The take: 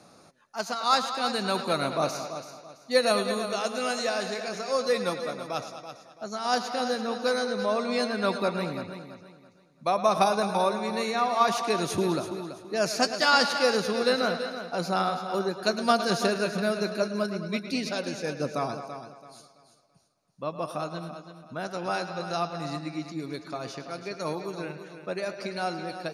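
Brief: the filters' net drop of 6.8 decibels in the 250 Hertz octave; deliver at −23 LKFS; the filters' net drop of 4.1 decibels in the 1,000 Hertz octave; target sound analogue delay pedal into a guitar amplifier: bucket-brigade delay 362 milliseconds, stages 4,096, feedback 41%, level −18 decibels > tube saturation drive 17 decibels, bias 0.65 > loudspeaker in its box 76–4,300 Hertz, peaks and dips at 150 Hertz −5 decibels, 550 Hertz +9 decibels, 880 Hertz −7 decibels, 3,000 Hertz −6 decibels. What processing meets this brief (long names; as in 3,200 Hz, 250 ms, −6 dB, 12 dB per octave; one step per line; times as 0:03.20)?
parametric band 250 Hz −8.5 dB
parametric band 1,000 Hz −3.5 dB
bucket-brigade delay 362 ms, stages 4,096, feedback 41%, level −18 dB
tube saturation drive 17 dB, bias 0.65
loudspeaker in its box 76–4,300 Hz, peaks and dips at 150 Hz −5 dB, 550 Hz +9 dB, 880 Hz −7 dB, 3,000 Hz −6 dB
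level +9.5 dB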